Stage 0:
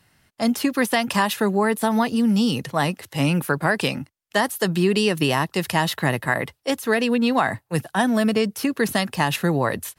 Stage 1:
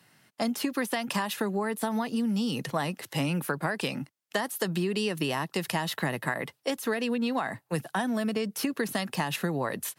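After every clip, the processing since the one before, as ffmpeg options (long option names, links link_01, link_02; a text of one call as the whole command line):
ffmpeg -i in.wav -af "highpass=frequency=130:width=0.5412,highpass=frequency=130:width=1.3066,acompressor=threshold=-26dB:ratio=6" out.wav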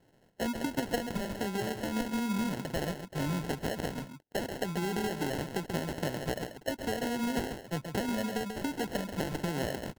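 ffmpeg -i in.wav -af "aecho=1:1:136:0.398,acrusher=samples=37:mix=1:aa=0.000001,volume=-4.5dB" out.wav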